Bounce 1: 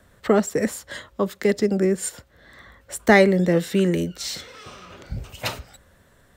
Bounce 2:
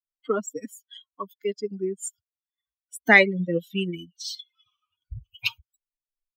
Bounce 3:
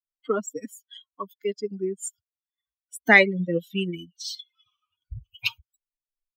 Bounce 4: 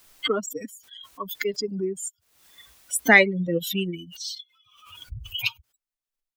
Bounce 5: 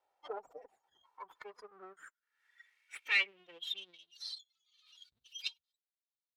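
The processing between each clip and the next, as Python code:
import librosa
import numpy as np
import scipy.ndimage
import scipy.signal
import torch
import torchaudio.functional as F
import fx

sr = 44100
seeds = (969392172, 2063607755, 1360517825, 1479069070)

y1 = fx.bin_expand(x, sr, power=3.0)
y1 = fx.peak_eq(y1, sr, hz=2500.0, db=13.5, octaves=1.4)
y1 = y1 * librosa.db_to_amplitude(-3.0)
y2 = y1
y3 = fx.pre_swell(y2, sr, db_per_s=65.0)
y4 = fx.lower_of_two(y3, sr, delay_ms=2.2)
y4 = fx.filter_sweep_bandpass(y4, sr, from_hz=720.0, to_hz=3900.0, start_s=0.64, end_s=4.01, q=5.9)
y4 = y4 * librosa.db_to_amplitude(-1.5)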